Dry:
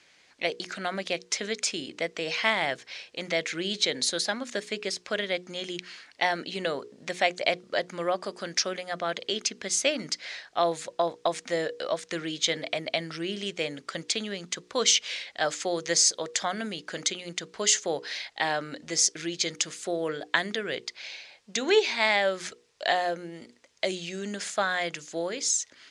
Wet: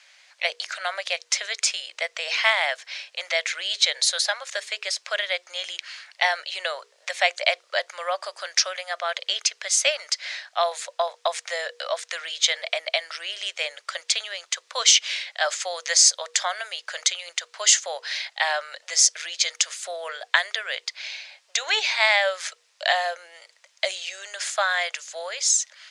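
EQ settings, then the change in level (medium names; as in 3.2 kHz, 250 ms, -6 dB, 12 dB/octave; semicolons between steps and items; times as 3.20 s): elliptic high-pass 570 Hz, stop band 60 dB; tilt shelf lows -4 dB, about 760 Hz; +3.0 dB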